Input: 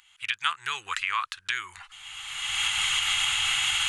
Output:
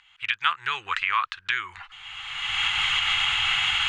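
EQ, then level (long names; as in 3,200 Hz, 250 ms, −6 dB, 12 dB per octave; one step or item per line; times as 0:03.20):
low-pass filter 3,200 Hz 12 dB per octave
+4.5 dB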